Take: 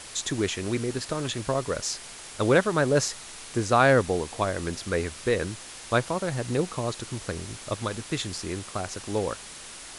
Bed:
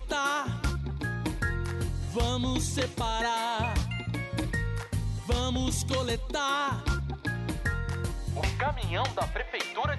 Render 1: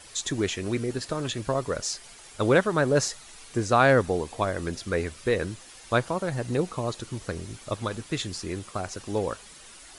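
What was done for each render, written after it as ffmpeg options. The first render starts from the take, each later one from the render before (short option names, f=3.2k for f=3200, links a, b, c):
-af "afftdn=nr=9:nf=-43"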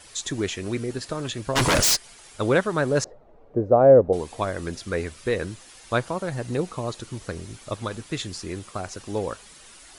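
-filter_complex "[0:a]asplit=3[a][b][c];[a]afade=t=out:st=1.55:d=0.02[d];[b]aeval=exprs='0.168*sin(PI/2*6.31*val(0)/0.168)':c=same,afade=t=in:st=1.55:d=0.02,afade=t=out:st=1.95:d=0.02[e];[c]afade=t=in:st=1.95:d=0.02[f];[d][e][f]amix=inputs=3:normalize=0,asettb=1/sr,asplit=3[g][h][i];[g]atrim=end=3.044[j];[h]atrim=start=3.04:end=4.13,asetpts=PTS-STARTPTS,afade=t=in:d=0.004:c=qsin,afade=t=out:st=1.086:d=0.004:c=qsin,lowpass=f=570:t=q:w=3[k];[i]atrim=start=4.126[l];[j][k]acrossfade=d=0.004:c1=hsin:c2=qsin[m];[m][l]acrossfade=d=0.004:c1=qsin:c2=hsin"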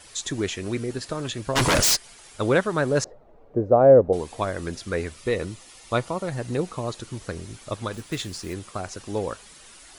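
-filter_complex "[0:a]asettb=1/sr,asplit=3[a][b][c];[a]atrim=end=5.174[d];[b]atrim=start=5.17:end=6.29,asetpts=PTS-STARTPTS,afade=t=in:d=0.004:c=qsin,afade=t=out:st=1.116:d=0.004:c=qsin,asuperstop=centerf=1600:order=4:qfactor=7.1[e];[c]atrim=start=6.286[f];[d][e]acrossfade=d=0.004:c1=hsin:c2=qsin[g];[g][f]acrossfade=d=0.004:c1=qsin:c2=hsin,asettb=1/sr,asplit=3[h][i][j];[h]atrim=end=7.934[k];[i]atrim=start=7.93:end=8.54,asetpts=PTS-STARTPTS,afade=t=in:d=0.004:c=qsin,afade=t=out:st=0.606:d=0.004:c=qsin,acrusher=bits=4:mode=log:mix=0:aa=0.000001[l];[j]atrim=start=8.536[m];[k][l]acrossfade=d=0.004:c1=hsin:c2=qsin[n];[n][m]acrossfade=d=0.004:c1=qsin:c2=hsin"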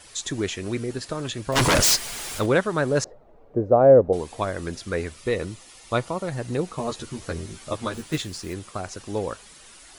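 -filter_complex "[0:a]asettb=1/sr,asplit=3[a][b][c];[a]atrim=end=1.524[d];[b]atrim=start=1.52:end=2.46,asetpts=PTS-STARTPTS,afade=t=in:d=0.004:c=qsin,afade=t=out:st=0.936:d=0.004:c=qsin,aeval=exprs='val(0)+0.5*0.0355*sgn(val(0))':c=same[e];[c]atrim=start=2.456[f];[d][e]acrossfade=d=0.004:c1=hsin:c2=qsin[g];[g][f]acrossfade=d=0.004:c1=qsin:c2=hsin,asettb=1/sr,asplit=3[h][i][j];[h]atrim=end=6.774[k];[i]atrim=start=6.77:end=8.18,asetpts=PTS-STARTPTS,afade=t=in:d=0.004:c=qsin,afade=t=out:st=1.406:d=0.004:c=qsin,asplit=2[l][m];[m]adelay=13,volume=-2dB[n];[l][n]amix=inputs=2:normalize=0,atrim=end_sample=62181[o];[j]atrim=start=8.176[p];[k][o]acrossfade=d=0.004:c1=hsin:c2=qsin[q];[q][p]acrossfade=d=0.004:c1=qsin:c2=hsin"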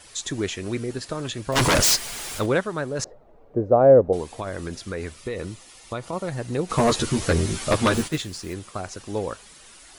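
-filter_complex "[0:a]asettb=1/sr,asplit=3[a][b][c];[a]atrim=end=4.334[d];[b]atrim=start=4.33:end=6.13,asetpts=PTS-STARTPTS,afade=t=in:d=0.004:c=qsin,afade=t=out:st=1.796:d=0.004:c=qsin,acompressor=threshold=-25dB:ratio=6:attack=3.2:release=140:knee=1:detection=peak[e];[c]atrim=start=6.126[f];[d][e]acrossfade=d=0.004:c1=hsin:c2=qsin[g];[g][f]acrossfade=d=0.004:c1=qsin:c2=hsin,asplit=3[h][i][j];[h]afade=t=out:st=6.69:d=0.02[k];[i]aeval=exprs='0.224*sin(PI/2*2.51*val(0)/0.224)':c=same,afade=t=in:st=6.69:d=0.02,afade=t=out:st=8.07:d=0.02[l];[j]afade=t=in:st=8.07:d=0.02[m];[k][l][m]amix=inputs=3:normalize=0,asplit=2[n][o];[n]atrim=end=2.99,asetpts=PTS-STARTPTS,afade=t=out:st=2.36:d=0.63:silence=0.398107[p];[o]atrim=start=2.99,asetpts=PTS-STARTPTS,afade=t=in:d=0.004:c=hsin:silence=0.398107[q];[p][q]concat=n=2:v=0:a=1"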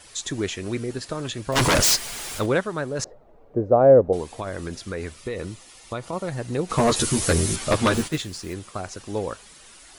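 -filter_complex "[0:a]asettb=1/sr,asplit=3[a][b][c];[a]atrim=end=6.964[d];[b]atrim=start=6.96:end=7.56,asetpts=PTS-STARTPTS,afade=t=in:d=0.004:c=qsin,afade=t=out:st=0.596:d=0.004:c=qsin,equalizer=f=12k:t=o:w=1.5:g=11.5[e];[c]atrim=start=7.556[f];[d][e]acrossfade=d=0.004:c1=hsin:c2=qsin[g];[g][f]acrossfade=d=0.004:c1=qsin:c2=hsin"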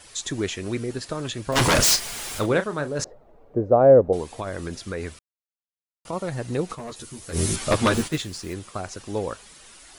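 -filter_complex "[0:a]asettb=1/sr,asplit=3[a][b][c];[a]atrim=end=1.464[d];[b]atrim=start=1.46:end=3.03,asetpts=PTS-STARTPTS,afade=t=in:d=0.004:c=qsin,afade=t=out:st=1.566:d=0.004:c=qsin,asplit=2[e][f];[f]adelay=34,volume=-11dB[g];[e][g]amix=inputs=2:normalize=0,atrim=end_sample=69237[h];[c]atrim=start=3.026[i];[d][h]acrossfade=d=0.004:c1=hsin:c2=qsin[j];[j][i]acrossfade=d=0.004:c1=qsin:c2=hsin,asplit=5[k][l][m][n][o];[k]atrim=end=5.19,asetpts=PTS-STARTPTS,afade=t=out:st=5.186:d=0.004:c=hsin[p];[l]atrim=start=5.19:end=6.05,asetpts=PTS-STARTPTS,volume=0[q];[m]atrim=start=6.05:end=6.76,asetpts=PTS-STARTPTS,afade=t=in:d=0.004:c=hsin,afade=t=out:st=0.58:d=0.13:c=qsin:silence=0.141254[r];[n]atrim=start=6.76:end=7.32,asetpts=PTS-STARTPTS,volume=-17dB[s];[o]atrim=start=7.32,asetpts=PTS-STARTPTS,afade=t=in:d=0.13:c=qsin:silence=0.141254[t];[p][q][r][s][t]concat=n=5:v=0:a=1"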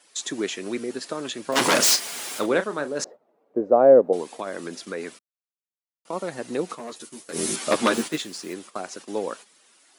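-af "agate=range=-10dB:threshold=-40dB:ratio=16:detection=peak,highpass=f=210:w=0.5412,highpass=f=210:w=1.3066"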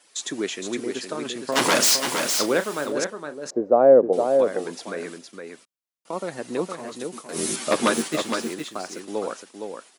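-af "aecho=1:1:463:0.501"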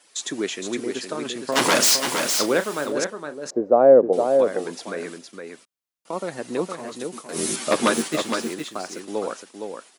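-af "volume=1dB"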